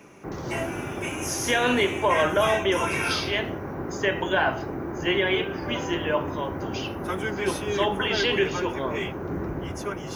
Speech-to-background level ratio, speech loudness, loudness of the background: 4.0 dB, −26.5 LKFS, −30.5 LKFS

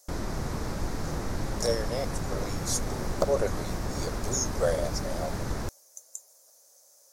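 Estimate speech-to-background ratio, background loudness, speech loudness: 1.5 dB, −34.0 LKFS, −32.5 LKFS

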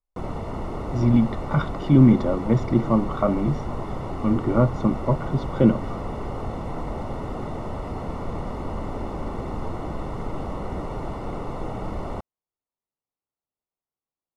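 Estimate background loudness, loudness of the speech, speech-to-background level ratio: −32.0 LKFS, −21.5 LKFS, 10.5 dB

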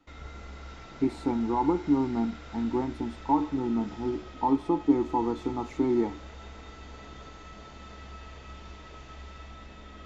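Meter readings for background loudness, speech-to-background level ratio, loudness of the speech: −45.5 LKFS, 17.0 dB, −28.5 LKFS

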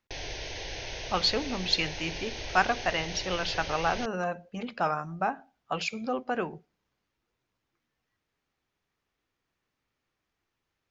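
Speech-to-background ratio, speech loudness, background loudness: 7.0 dB, −30.5 LKFS, −37.5 LKFS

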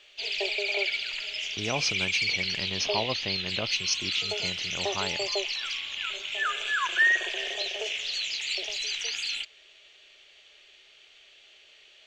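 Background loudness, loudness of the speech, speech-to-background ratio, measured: −28.0 LKFS, −32.5 LKFS, −4.5 dB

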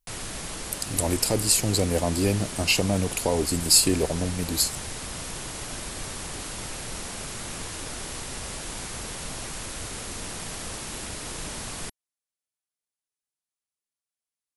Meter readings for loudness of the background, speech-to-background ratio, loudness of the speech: −34.0 LKFS, 11.0 dB, −23.0 LKFS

